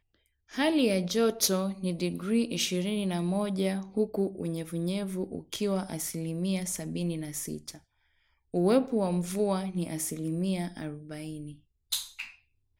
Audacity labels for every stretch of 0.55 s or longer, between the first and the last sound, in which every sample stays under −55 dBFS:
7.820000	8.540000	silence